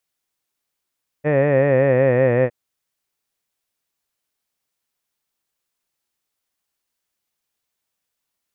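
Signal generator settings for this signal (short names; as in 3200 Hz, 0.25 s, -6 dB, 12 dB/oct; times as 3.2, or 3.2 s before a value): formant-synthesis vowel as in head, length 1.26 s, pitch 145 Hz, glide -3 st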